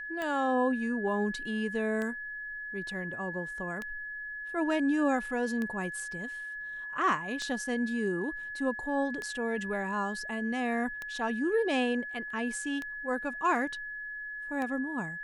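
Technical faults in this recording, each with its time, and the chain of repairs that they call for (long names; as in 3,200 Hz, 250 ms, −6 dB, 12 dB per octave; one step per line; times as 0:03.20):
scratch tick 33 1/3 rpm −22 dBFS
whistle 1,700 Hz −37 dBFS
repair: click removal
notch filter 1,700 Hz, Q 30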